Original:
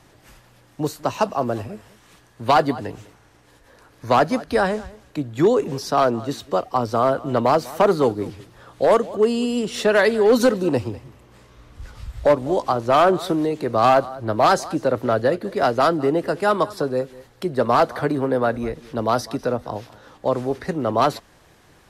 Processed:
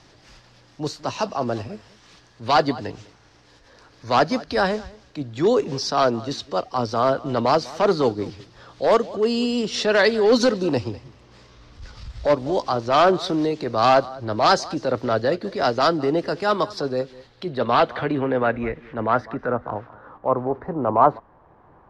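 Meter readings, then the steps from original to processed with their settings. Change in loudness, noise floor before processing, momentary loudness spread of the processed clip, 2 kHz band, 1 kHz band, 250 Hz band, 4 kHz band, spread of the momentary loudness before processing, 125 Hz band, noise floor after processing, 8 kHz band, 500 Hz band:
−1.0 dB, −54 dBFS, 13 LU, 0.0 dB, −1.0 dB, −1.5 dB, +3.5 dB, 13 LU, −2.0 dB, −54 dBFS, −1.0 dB, −1.5 dB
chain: low-pass filter sweep 5,100 Hz → 990 Hz, 0:16.92–0:20.47
transient designer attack −6 dB, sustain −2 dB

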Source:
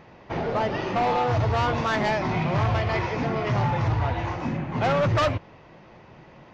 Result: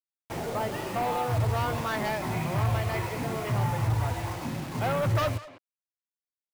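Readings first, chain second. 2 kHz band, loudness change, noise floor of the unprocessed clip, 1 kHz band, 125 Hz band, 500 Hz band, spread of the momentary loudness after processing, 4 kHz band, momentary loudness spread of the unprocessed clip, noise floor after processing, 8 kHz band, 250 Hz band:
−5.5 dB, −4.5 dB, −50 dBFS, −5.5 dB, −2.5 dB, −5.5 dB, 7 LU, −4.5 dB, 6 LU, below −85 dBFS, can't be measured, −5.5 dB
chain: bit-depth reduction 6 bits, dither none
far-end echo of a speakerphone 200 ms, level −10 dB
dynamic equaliser 110 Hz, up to +5 dB, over −39 dBFS, Q 4.9
level −6 dB

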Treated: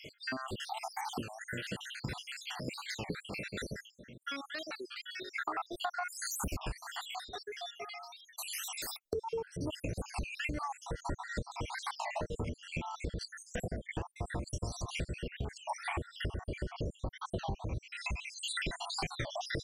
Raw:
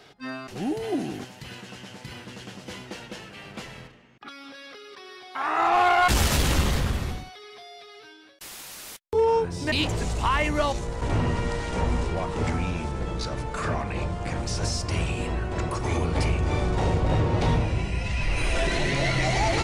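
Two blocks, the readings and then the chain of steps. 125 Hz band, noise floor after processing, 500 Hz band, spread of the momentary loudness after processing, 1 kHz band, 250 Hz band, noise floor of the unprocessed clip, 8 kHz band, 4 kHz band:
−15.0 dB, −64 dBFS, −14.0 dB, 5 LU, −13.5 dB, −13.5 dB, −48 dBFS, −8.0 dB, −9.0 dB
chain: time-frequency cells dropped at random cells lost 74%
downward compressor 12 to 1, threshold −41 dBFS, peak gain reduction 23 dB
wow of a warped record 33 1/3 rpm, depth 250 cents
level +7 dB

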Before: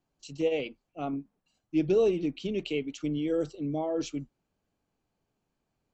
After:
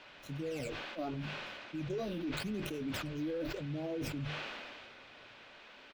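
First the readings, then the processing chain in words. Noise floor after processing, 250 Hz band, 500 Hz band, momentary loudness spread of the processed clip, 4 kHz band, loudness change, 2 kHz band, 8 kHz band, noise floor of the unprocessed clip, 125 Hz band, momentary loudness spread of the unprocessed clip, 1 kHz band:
−56 dBFS, −8.0 dB, −11.5 dB, 16 LU, −0.5 dB, −9.0 dB, +1.5 dB, can't be measured, −82 dBFS, −1.5 dB, 14 LU, −4.0 dB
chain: running median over 15 samples
parametric band 110 Hz +7.5 dB 1.5 octaves
double-tracking delay 19 ms −11.5 dB
reversed playback
downward compressor 6 to 1, threshold −33 dBFS, peak gain reduction 14 dB
reversed playback
all-pass phaser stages 12, 0.82 Hz, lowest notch 120–1,600 Hz
brickwall limiter −38 dBFS, peak gain reduction 12 dB
noise in a band 210–3,200 Hz −63 dBFS
bass and treble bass +1 dB, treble +6 dB
mains-hum notches 50/100/150 Hz
hollow resonant body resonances 580/1,500/2,500 Hz, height 7 dB
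level that may fall only so fast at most 25 dB per second
level +5.5 dB

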